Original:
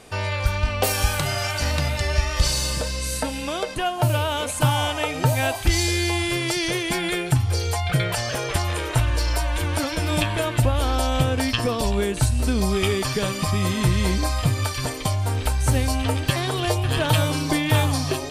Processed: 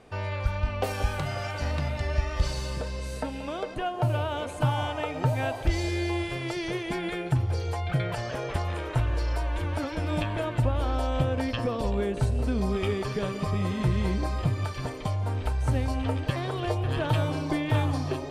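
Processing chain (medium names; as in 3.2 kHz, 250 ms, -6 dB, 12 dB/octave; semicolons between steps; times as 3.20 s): low-pass 1.6 kHz 6 dB/octave; band-passed feedback delay 179 ms, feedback 81%, band-pass 470 Hz, level -11.5 dB; trim -5 dB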